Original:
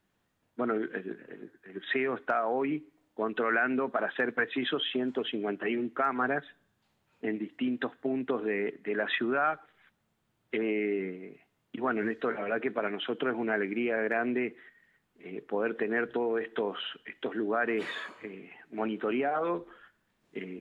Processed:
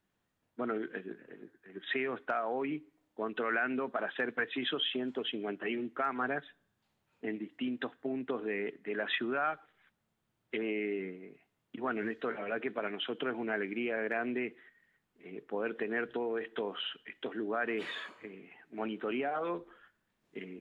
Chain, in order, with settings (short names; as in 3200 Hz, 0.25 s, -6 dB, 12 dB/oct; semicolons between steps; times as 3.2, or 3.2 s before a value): dynamic EQ 3100 Hz, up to +5 dB, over -49 dBFS, Q 1.7; gain -5 dB